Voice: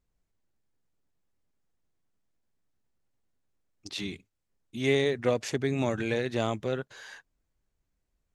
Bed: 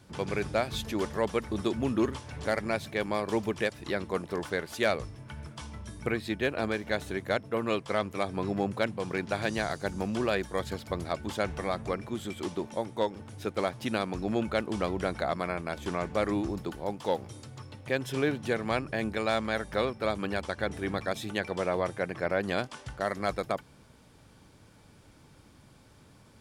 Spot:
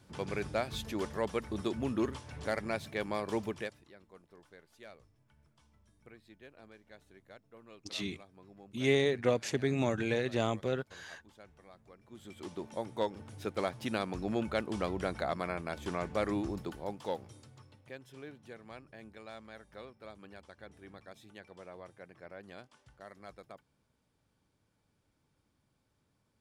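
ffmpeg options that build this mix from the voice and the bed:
ffmpeg -i stem1.wav -i stem2.wav -filter_complex "[0:a]adelay=4000,volume=-2.5dB[link_01];[1:a]volume=16.5dB,afade=type=out:start_time=3.42:duration=0.46:silence=0.0944061,afade=type=in:start_time=12:duration=0.95:silence=0.0841395,afade=type=out:start_time=16.56:duration=1.46:silence=0.158489[link_02];[link_01][link_02]amix=inputs=2:normalize=0" out.wav

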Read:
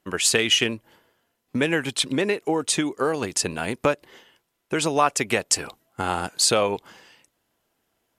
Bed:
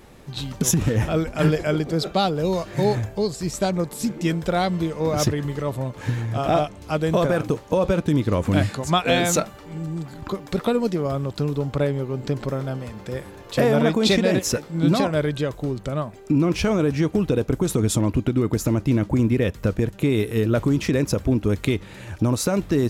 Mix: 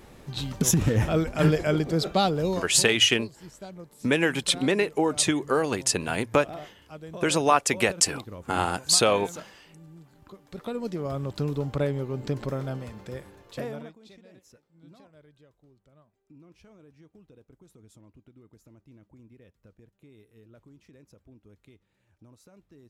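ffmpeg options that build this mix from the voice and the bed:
ffmpeg -i stem1.wav -i stem2.wav -filter_complex "[0:a]adelay=2500,volume=-0.5dB[link_01];[1:a]volume=13dB,afade=type=out:start_time=2.35:duration=0.52:silence=0.133352,afade=type=in:start_time=10.45:duration=0.88:silence=0.177828,afade=type=out:start_time=12.74:duration=1.21:silence=0.0334965[link_02];[link_01][link_02]amix=inputs=2:normalize=0" out.wav

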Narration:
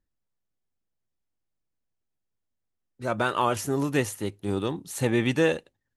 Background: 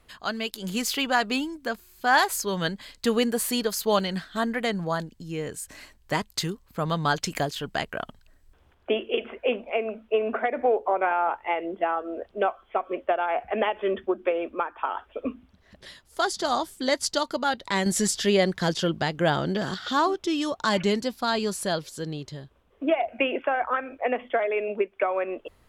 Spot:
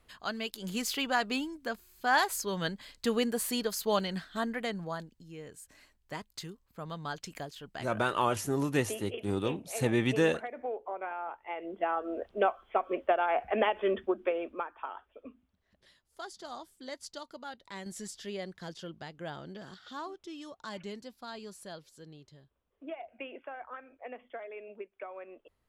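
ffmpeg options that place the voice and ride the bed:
ffmpeg -i stem1.wav -i stem2.wav -filter_complex "[0:a]adelay=4800,volume=-4dB[link_01];[1:a]volume=5.5dB,afade=type=out:start_time=4.33:duration=0.98:silence=0.398107,afade=type=in:start_time=11.46:duration=0.66:silence=0.266073,afade=type=out:start_time=13.8:duration=1.39:silence=0.16788[link_02];[link_01][link_02]amix=inputs=2:normalize=0" out.wav

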